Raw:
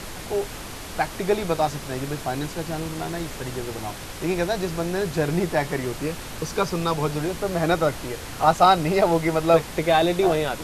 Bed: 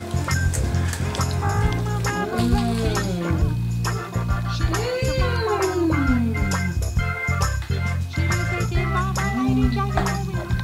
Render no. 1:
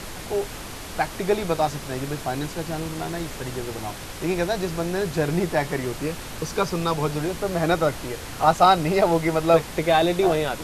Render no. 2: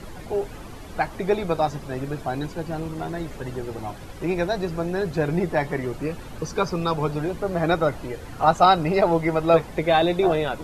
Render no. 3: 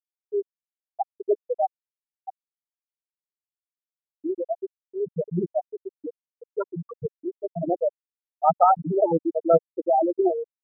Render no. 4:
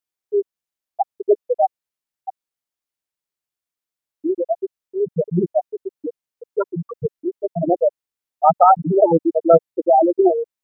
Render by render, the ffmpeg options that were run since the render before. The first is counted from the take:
-af anull
-af "afftdn=nr=12:nf=-36"
-af "lowpass=1.6k,afftfilt=real='re*gte(hypot(re,im),0.562)':imag='im*gte(hypot(re,im),0.562)':win_size=1024:overlap=0.75"
-af "volume=7dB,alimiter=limit=-2dB:level=0:latency=1"

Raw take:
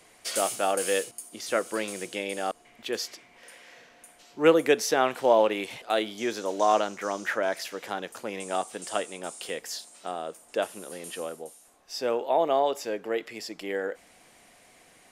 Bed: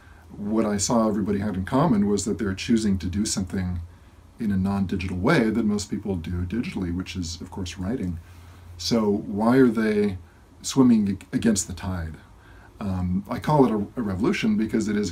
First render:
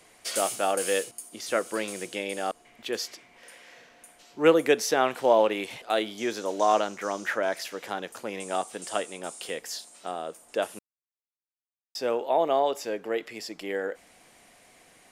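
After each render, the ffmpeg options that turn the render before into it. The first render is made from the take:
-filter_complex "[0:a]asplit=3[a][b][c];[a]atrim=end=10.79,asetpts=PTS-STARTPTS,afade=t=out:st=10.786:d=0.004:c=hsin[d];[b]atrim=start=10.79:end=11.95,asetpts=PTS-STARTPTS,volume=0[e];[c]atrim=start=11.95,asetpts=PTS-STARTPTS,afade=t=in:d=0.004:c=hsin[f];[d][e][f]concat=n=3:v=0:a=1"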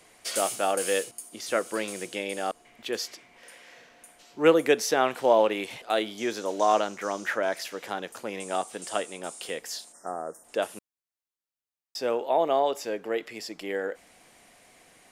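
-filter_complex "[0:a]asplit=3[a][b][c];[a]afade=t=out:st=9.92:d=0.02[d];[b]asuperstop=centerf=3200:order=20:qfactor=0.97,afade=t=in:st=9.92:d=0.02,afade=t=out:st=10.43:d=0.02[e];[c]afade=t=in:st=10.43:d=0.02[f];[d][e][f]amix=inputs=3:normalize=0"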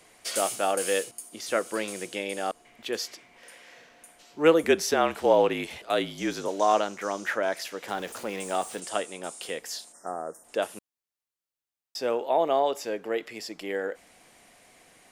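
-filter_complex "[0:a]asettb=1/sr,asplit=3[a][b][c];[a]atrim=end=4.634[d];[b]atrim=start=4.63:end=6.48,asetpts=PTS-STARTPTS,afade=t=in:d=0.004:c=qsin,afade=t=out:st=1.846:d=0.004:c=qsin,afreqshift=-43[e];[c]atrim=start=6.476[f];[d][e]acrossfade=d=0.004:c1=hsin:c2=qsin[g];[g][f]acrossfade=d=0.004:c1=qsin:c2=hsin,asettb=1/sr,asplit=3[h][i][j];[h]atrim=end=7.884[k];[i]atrim=start=7.88:end=8.8,asetpts=PTS-STARTPTS,afade=t=in:d=0.004:c=qsin,afade=t=out:st=0.916:d=0.004:c=qsin,aeval=exprs='val(0)+0.5*0.00891*sgn(val(0))':c=same[l];[j]atrim=start=8.796[m];[k][l]acrossfade=d=0.004:c1=hsin:c2=qsin[n];[n][m]acrossfade=d=0.004:c1=qsin:c2=hsin"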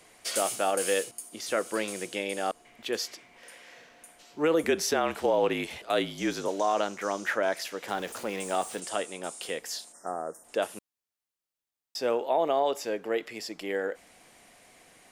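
-af "alimiter=limit=-15.5dB:level=0:latency=1:release=47"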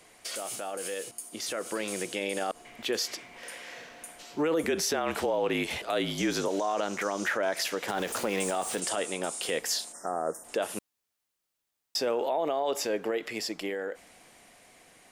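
-af "alimiter=level_in=2.5dB:limit=-24dB:level=0:latency=1:release=77,volume=-2.5dB,dynaudnorm=f=170:g=21:m=7dB"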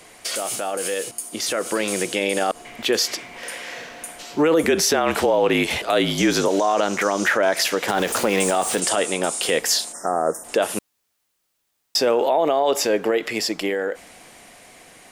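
-af "volume=10dB"

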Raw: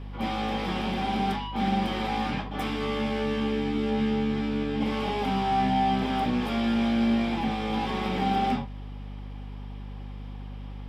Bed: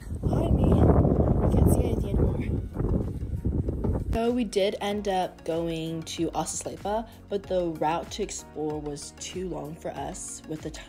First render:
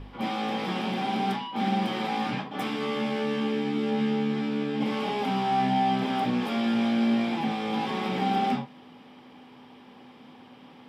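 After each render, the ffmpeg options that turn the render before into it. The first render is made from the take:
-af "bandreject=f=50:t=h:w=4,bandreject=f=100:t=h:w=4,bandreject=f=150:t=h:w=4,bandreject=f=200:t=h:w=4"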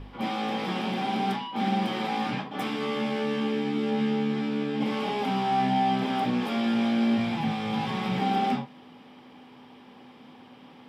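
-filter_complex "[0:a]asplit=3[a][b][c];[a]afade=t=out:st=7.17:d=0.02[d];[b]asubboost=boost=10:cutoff=98,afade=t=in:st=7.17:d=0.02,afade=t=out:st=8.19:d=0.02[e];[c]afade=t=in:st=8.19:d=0.02[f];[d][e][f]amix=inputs=3:normalize=0"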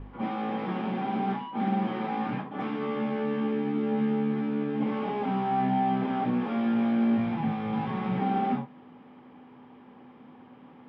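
-af "lowpass=1.6k,equalizer=f=660:w=1.5:g=-2.5"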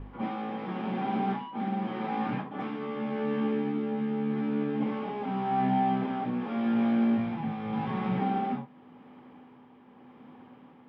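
-af "tremolo=f=0.87:d=0.39"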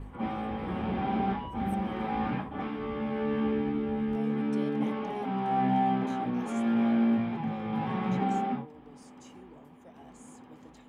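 -filter_complex "[1:a]volume=-20.5dB[a];[0:a][a]amix=inputs=2:normalize=0"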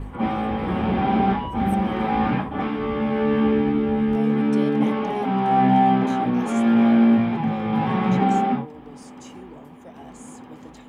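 -af "volume=9.5dB"

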